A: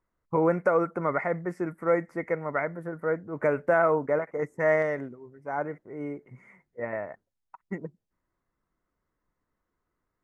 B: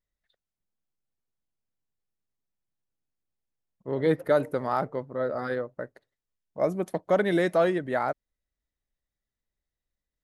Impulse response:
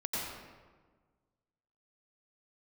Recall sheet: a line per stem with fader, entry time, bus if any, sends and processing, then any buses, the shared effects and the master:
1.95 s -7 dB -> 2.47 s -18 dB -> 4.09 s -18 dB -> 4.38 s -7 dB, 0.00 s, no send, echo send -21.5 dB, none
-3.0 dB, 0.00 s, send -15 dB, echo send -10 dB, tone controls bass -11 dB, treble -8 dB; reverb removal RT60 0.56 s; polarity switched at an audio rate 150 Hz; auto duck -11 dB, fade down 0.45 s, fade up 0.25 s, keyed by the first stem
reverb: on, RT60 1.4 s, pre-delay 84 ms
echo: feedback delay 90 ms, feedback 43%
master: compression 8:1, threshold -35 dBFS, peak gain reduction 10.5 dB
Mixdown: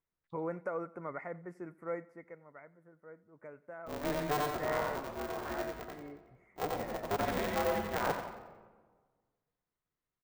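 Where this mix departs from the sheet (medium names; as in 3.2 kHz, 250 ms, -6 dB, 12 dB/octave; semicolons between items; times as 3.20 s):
stem A -7.0 dB -> -14.0 dB; master: missing compression 8:1, threshold -35 dBFS, peak gain reduction 10.5 dB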